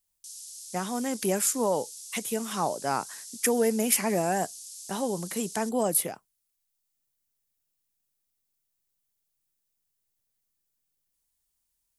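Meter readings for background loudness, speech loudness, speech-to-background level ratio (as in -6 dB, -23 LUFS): -40.5 LUFS, -28.5 LUFS, 12.0 dB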